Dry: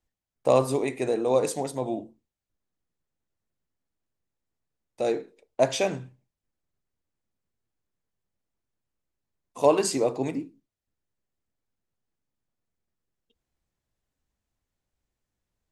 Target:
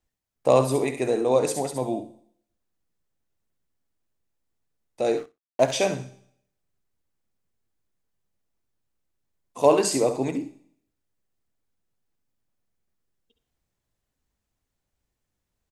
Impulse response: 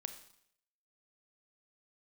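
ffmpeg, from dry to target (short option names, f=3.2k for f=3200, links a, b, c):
-filter_complex "[0:a]asplit=2[a][b];[1:a]atrim=start_sample=2205,highshelf=f=5.2k:g=11,adelay=68[c];[b][c]afir=irnorm=-1:irlink=0,volume=-10dB[d];[a][d]amix=inputs=2:normalize=0,asettb=1/sr,asplit=3[e][f][g];[e]atrim=end=5.174[h];[f]atrim=start=5.17:end=5.72,asetpts=PTS-STARTPTS,afade=t=in:d=0.004:c=qsin,afade=t=out:st=0.546:d=0.004:c=qsin,aeval=exprs='sgn(val(0))*max(abs(val(0))-0.00794,0)':c=same[i];[g]atrim=start=5.716[j];[h][i]acrossfade=d=0.004:c1=hsin:c2=qsin[k];[k][j]acrossfade=d=0.004:c1=qsin:c2=hsin,asplit=2[l][m];[m]aecho=0:1:61|122:0.106|0.018[n];[l][n]amix=inputs=2:normalize=0,volume=2dB"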